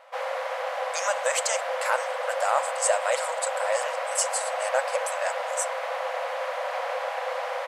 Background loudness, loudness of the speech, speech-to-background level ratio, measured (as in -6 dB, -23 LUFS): -30.0 LUFS, -28.5 LUFS, 1.5 dB